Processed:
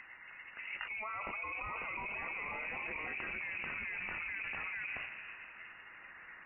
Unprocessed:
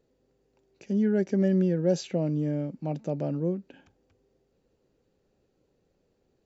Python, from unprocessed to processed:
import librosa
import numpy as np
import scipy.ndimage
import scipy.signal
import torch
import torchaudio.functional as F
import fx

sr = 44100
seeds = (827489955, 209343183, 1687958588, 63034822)

y = fx.hum_notches(x, sr, base_hz=60, count=4)
y = fx.spec_gate(y, sr, threshold_db=-20, keep='weak')
y = fx.env_lowpass(y, sr, base_hz=770.0, full_db=-42.0)
y = fx.peak_eq(y, sr, hz=950.0, db=-9.5, octaves=1.1, at=(1.23, 3.42))
y = fx.echo_pitch(y, sr, ms=618, semitones=1, count=3, db_per_echo=-6.0)
y = fx.room_shoebox(y, sr, seeds[0], volume_m3=2000.0, walls='mixed', distance_m=0.48)
y = fx.freq_invert(y, sr, carrier_hz=2800)
y = fx.env_flatten(y, sr, amount_pct=100)
y = y * 10.0 ** (2.5 / 20.0)